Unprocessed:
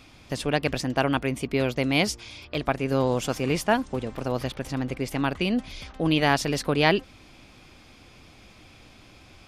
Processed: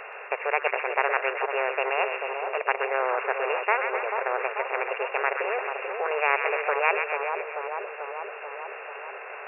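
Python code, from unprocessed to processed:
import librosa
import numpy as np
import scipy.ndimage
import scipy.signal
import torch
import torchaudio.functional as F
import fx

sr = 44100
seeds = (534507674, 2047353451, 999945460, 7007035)

y = fx.formant_shift(x, sr, semitones=4)
y = fx.brickwall_bandpass(y, sr, low_hz=390.0, high_hz=2800.0)
y = fx.echo_split(y, sr, split_hz=1200.0, low_ms=439, high_ms=128, feedback_pct=52, wet_db=-9)
y = fx.spectral_comp(y, sr, ratio=2.0)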